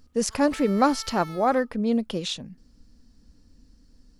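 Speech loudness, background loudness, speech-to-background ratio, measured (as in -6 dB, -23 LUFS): -24.5 LUFS, -43.0 LUFS, 18.5 dB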